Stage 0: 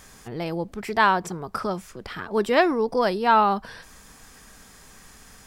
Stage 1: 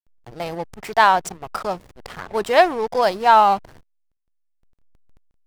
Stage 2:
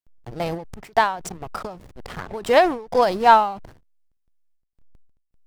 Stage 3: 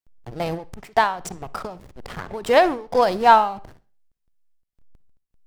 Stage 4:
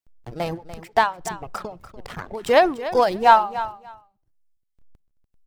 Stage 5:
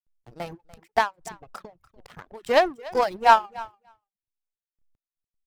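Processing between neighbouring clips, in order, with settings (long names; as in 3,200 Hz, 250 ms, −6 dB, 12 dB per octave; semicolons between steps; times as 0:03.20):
drawn EQ curve 150 Hz 0 dB, 260 Hz −5 dB, 430 Hz +1 dB, 760 Hz +10 dB, 1,200 Hz +3 dB, 2,200 Hz +5 dB, 3,400 Hz +6 dB, 8,700 Hz +11 dB; slack as between gear wheels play −24.5 dBFS; level −1 dB
low-shelf EQ 420 Hz +6.5 dB; every ending faded ahead of time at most 110 dB per second
convolution reverb RT60 0.40 s, pre-delay 43 ms, DRR 18 dB
reverb reduction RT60 1 s; repeating echo 292 ms, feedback 17%, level −14 dB
reverb reduction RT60 0.58 s; power curve on the samples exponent 1.4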